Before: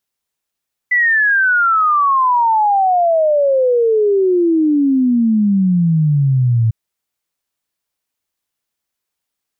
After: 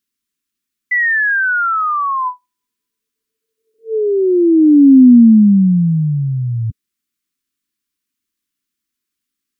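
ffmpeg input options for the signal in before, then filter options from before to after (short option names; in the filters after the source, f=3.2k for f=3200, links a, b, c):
-f lavfi -i "aevalsrc='0.316*clip(min(t,5.8-t)/0.01,0,1)*sin(2*PI*2000*5.8/log(110/2000)*(exp(log(110/2000)*t/5.8)-1))':d=5.8:s=44100"
-af "afftfilt=real='re*(1-between(b*sr/4096,450,1000))':imag='im*(1-between(b*sr/4096,450,1000))':win_size=4096:overlap=0.75,equalizer=f=125:t=o:w=1:g=-7,equalizer=f=250:t=o:w=1:g=11,equalizer=f=500:t=o:w=1:g=-6,equalizer=f=1k:t=o:w=1:g=-4"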